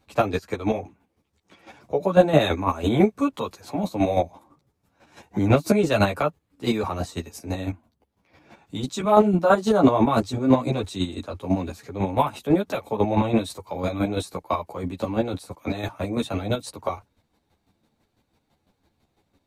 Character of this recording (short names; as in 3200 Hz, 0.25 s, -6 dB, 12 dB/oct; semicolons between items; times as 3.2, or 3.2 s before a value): chopped level 6 Hz, depth 60%, duty 25%; a shimmering, thickened sound